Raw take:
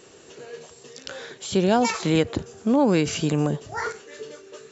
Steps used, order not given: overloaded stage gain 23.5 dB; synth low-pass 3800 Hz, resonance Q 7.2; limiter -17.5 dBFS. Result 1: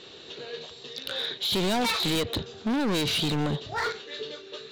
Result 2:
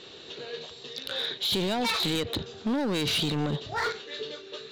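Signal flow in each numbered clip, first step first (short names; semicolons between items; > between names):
synth low-pass > overloaded stage > limiter; limiter > synth low-pass > overloaded stage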